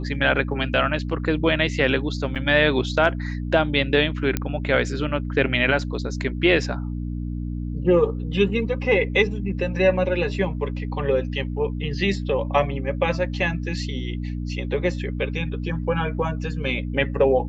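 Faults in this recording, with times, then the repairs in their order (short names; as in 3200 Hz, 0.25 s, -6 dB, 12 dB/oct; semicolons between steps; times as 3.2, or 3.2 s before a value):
hum 60 Hz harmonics 5 -28 dBFS
2.35–2.36 gap 7.7 ms
4.37 pop -8 dBFS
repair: de-click; de-hum 60 Hz, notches 5; interpolate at 2.35, 7.7 ms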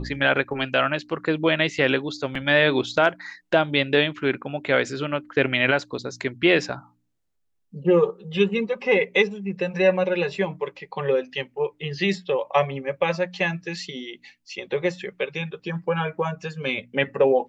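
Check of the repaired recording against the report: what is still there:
none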